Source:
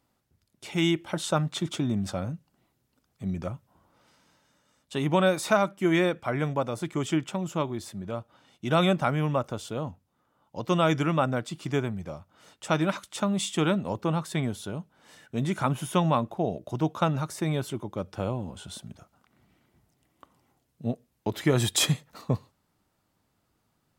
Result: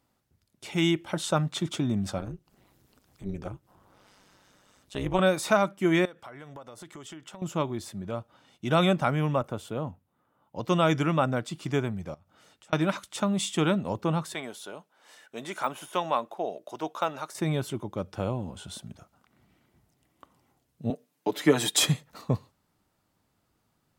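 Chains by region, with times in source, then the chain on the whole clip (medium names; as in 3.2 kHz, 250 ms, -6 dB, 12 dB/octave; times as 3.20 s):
2.18–5.19 s: upward compressor, threshold -46 dBFS + AM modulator 200 Hz, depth 80%
6.05–7.42 s: bass shelf 320 Hz -10 dB + band-stop 2.4 kHz, Q 9.1 + compression, threshold -41 dBFS
9.41–10.59 s: high-pass 63 Hz + peaking EQ 5.5 kHz -8.5 dB 1.3 oct
12.14–12.73 s: compression 8:1, threshold -54 dBFS + band-stop 1 kHz, Q 14
14.34–17.35 s: de-esser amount 90% + high-pass 480 Hz
20.90–21.80 s: high-pass 190 Hz 24 dB/octave + comb 6.8 ms, depth 76%
whole clip: none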